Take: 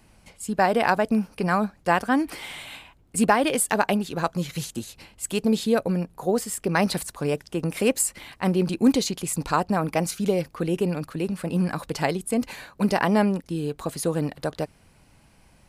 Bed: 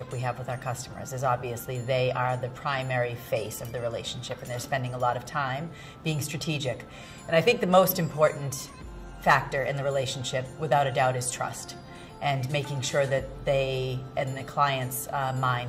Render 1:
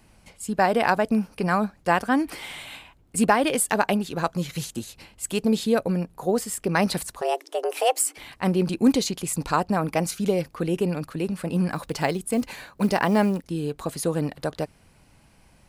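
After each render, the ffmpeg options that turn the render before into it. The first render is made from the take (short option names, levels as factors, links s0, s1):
-filter_complex "[0:a]asplit=3[s0][s1][s2];[s0]afade=t=out:st=7.2:d=0.02[s3];[s1]afreqshift=250,afade=t=in:st=7.2:d=0.02,afade=t=out:st=8.17:d=0.02[s4];[s2]afade=t=in:st=8.17:d=0.02[s5];[s3][s4][s5]amix=inputs=3:normalize=0,asettb=1/sr,asplit=3[s6][s7][s8];[s6]atrim=end=11.734[s9];[s7]atrim=start=11.73:end=13.46,asetpts=PTS-STARTPTS,afade=t=in:d=0.004:c=qsin,afade=t=out:st=1.726:d=0.004:c=qsin,acrusher=bits=8:mode=log:mix=0:aa=0.000001[s10];[s8]atrim=start=13.456[s11];[s9][s10]acrossfade=d=0.004:c1=hsin:c2=qsin[s12];[s12][s11]acrossfade=d=0.004:c1=qsin:c2=hsin"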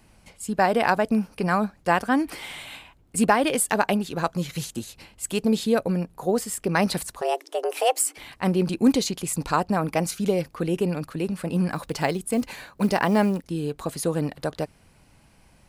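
-af anull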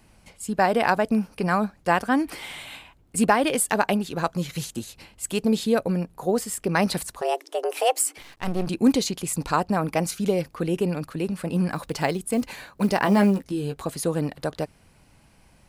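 -filter_complex "[0:a]asettb=1/sr,asplit=3[s0][s1][s2];[s0]atrim=end=8.214[s3];[s1]atrim=start=8.21:end=8.67,asetpts=PTS-STARTPTS,afade=t=in:d=0.004:c=qsin,afade=t=out:st=0.456:d=0.004:c=qsin,aeval=exprs='max(val(0),0)':c=same[s4];[s2]atrim=start=8.666[s5];[s3][s4]acrossfade=d=0.004:c1=hsin:c2=qsin[s6];[s6][s5]acrossfade=d=0.004:c1=qsin:c2=hsin,asettb=1/sr,asplit=3[s7][s8][s9];[s7]atrim=end=13.044[s10];[s8]atrim=start=13.04:end=13.82,asetpts=PTS-STARTPTS,afade=t=in:d=0.004:c=qsin,afade=t=out:st=0.776:d=0.004:c=qsin,asplit=2[s11][s12];[s12]adelay=15,volume=0.562[s13];[s11][s13]amix=inputs=2:normalize=0,atrim=end_sample=34398[s14];[s9]atrim=start=13.816[s15];[s10][s14]acrossfade=d=0.004:c1=hsin:c2=qsin[s16];[s16][s15]acrossfade=d=0.004:c1=qsin:c2=hsin"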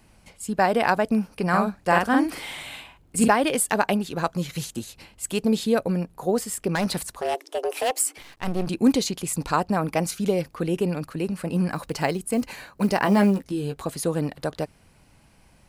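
-filter_complex "[0:a]asettb=1/sr,asplit=3[s0][s1][s2];[s0]atrim=end=1.494[s3];[s1]atrim=start=1.49:end=3.28,asetpts=PTS-STARTPTS,afade=t=in:d=0.004:c=qsin,afade=t=out:st=1.786:d=0.004:c=qsin,asplit=2[s4][s5];[s5]adelay=45,volume=0.75[s6];[s4][s6]amix=inputs=2:normalize=0,atrim=end_sample=78939[s7];[s2]atrim=start=3.276[s8];[s3][s7]acrossfade=d=0.004:c1=hsin:c2=qsin[s9];[s9][s8]acrossfade=d=0.004:c1=qsin:c2=hsin,asettb=1/sr,asplit=3[s10][s11][s12];[s10]atrim=end=6.754[s13];[s11]atrim=start=6.75:end=8,asetpts=PTS-STARTPTS,afade=t=in:d=0.004:c=qsin,afade=t=out:st=1.246:d=0.004:c=qsin,asoftclip=type=hard:threshold=0.106[s14];[s12]atrim=start=7.996[s15];[s13][s14]acrossfade=d=0.004:c1=hsin:c2=qsin[s16];[s16][s15]acrossfade=d=0.004:c1=qsin:c2=hsin,asettb=1/sr,asplit=3[s17][s18][s19];[s17]atrim=end=11.084[s20];[s18]atrim=start=11.08:end=13.1,asetpts=PTS-STARTPTS,afade=t=in:d=0.004:c=qsin,afade=t=out:st=2.016:d=0.004:c=qsin,bandreject=f=3500:w=12[s21];[s19]atrim=start=13.096[s22];[s20][s21]acrossfade=d=0.004:c1=hsin:c2=qsin[s23];[s23][s22]acrossfade=d=0.004:c1=qsin:c2=hsin"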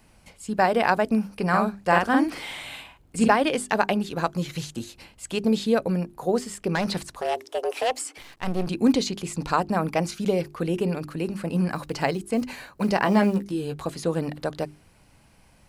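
-filter_complex "[0:a]acrossover=split=7100[s0][s1];[s1]acompressor=threshold=0.00316:ratio=4:attack=1:release=60[s2];[s0][s2]amix=inputs=2:normalize=0,bandreject=f=50:t=h:w=6,bandreject=f=100:t=h:w=6,bandreject=f=150:t=h:w=6,bandreject=f=200:t=h:w=6,bandreject=f=250:t=h:w=6,bandreject=f=300:t=h:w=6,bandreject=f=350:t=h:w=6,bandreject=f=400:t=h:w=6"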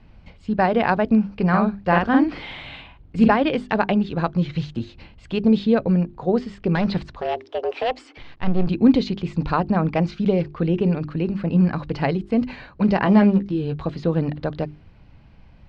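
-af "lowpass=f=4100:w=0.5412,lowpass=f=4100:w=1.3066,lowshelf=f=220:g=12"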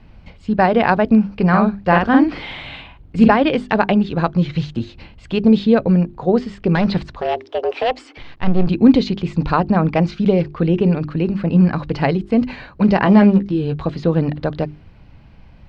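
-af "volume=1.68,alimiter=limit=0.891:level=0:latency=1"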